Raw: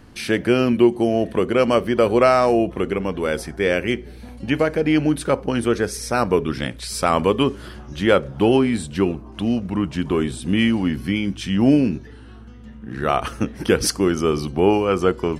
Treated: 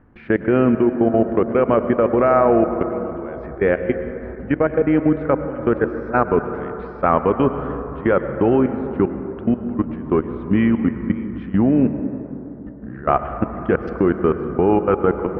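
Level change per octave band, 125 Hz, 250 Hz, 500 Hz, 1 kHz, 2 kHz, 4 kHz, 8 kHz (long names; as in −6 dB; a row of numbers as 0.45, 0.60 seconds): +0.5 dB, +1.0 dB, +1.0 dB, +1.5 dB, −2.5 dB, below −15 dB, below −40 dB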